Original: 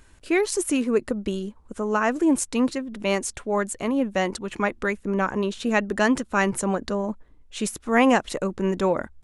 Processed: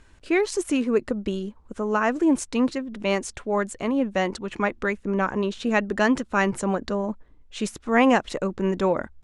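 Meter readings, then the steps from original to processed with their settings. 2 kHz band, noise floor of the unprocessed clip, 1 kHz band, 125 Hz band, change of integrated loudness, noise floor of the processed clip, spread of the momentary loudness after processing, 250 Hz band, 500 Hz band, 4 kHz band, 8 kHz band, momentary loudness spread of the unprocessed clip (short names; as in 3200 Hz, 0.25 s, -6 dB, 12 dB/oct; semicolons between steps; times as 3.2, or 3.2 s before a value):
0.0 dB, -54 dBFS, 0.0 dB, 0.0 dB, 0.0 dB, -54 dBFS, 9 LU, 0.0 dB, 0.0 dB, -1.0 dB, -5.5 dB, 8 LU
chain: Bessel low-pass 6000 Hz, order 2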